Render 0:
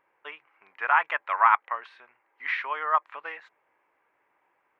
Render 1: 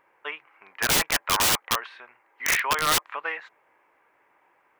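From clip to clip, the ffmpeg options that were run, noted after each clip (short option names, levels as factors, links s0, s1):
-af "aeval=exprs='(mod(13.3*val(0)+1,2)-1)/13.3':c=same,volume=2.24"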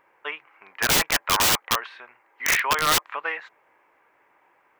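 -af "equalizer=f=9800:t=o:w=0.35:g=-3,volume=1.26"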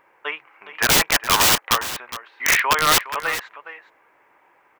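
-af "aecho=1:1:413:0.211,volume=1.58"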